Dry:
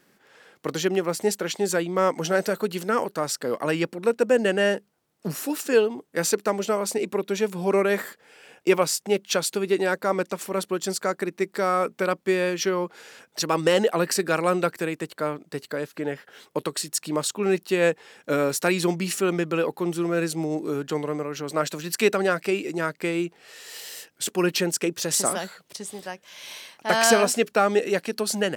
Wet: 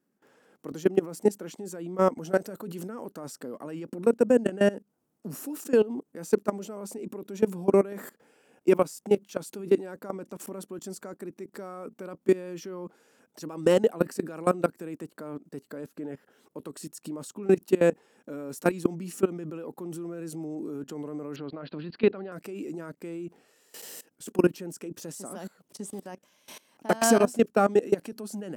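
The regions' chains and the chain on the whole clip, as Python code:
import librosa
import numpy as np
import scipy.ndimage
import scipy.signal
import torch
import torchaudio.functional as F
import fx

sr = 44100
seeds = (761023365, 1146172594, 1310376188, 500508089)

y = fx.chain(x, sr, fx.steep_lowpass(hz=4600.0, slope=96),
    fx.peak_eq(hz=290.0, db=-2.0, octaves=1.7), at=(21.36, 22.32))
y = fx.level_steps(y, sr, step_db=20)
y = fx.graphic_eq(y, sr, hz=(250, 2000, 4000), db=(9, -6, -8))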